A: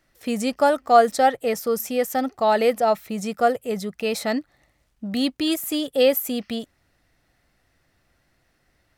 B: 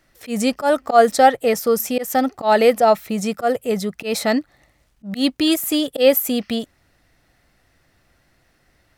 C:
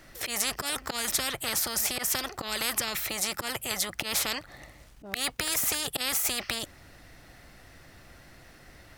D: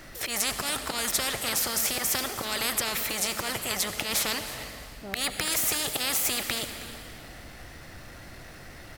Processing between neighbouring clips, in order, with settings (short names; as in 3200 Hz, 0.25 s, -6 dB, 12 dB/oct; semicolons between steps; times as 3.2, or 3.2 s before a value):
auto swell 0.109 s; gain +5.5 dB
spectral compressor 10:1; gain -8.5 dB
G.711 law mismatch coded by mu; echo 0.317 s -17 dB; reverb RT60 3.1 s, pre-delay 68 ms, DRR 7.5 dB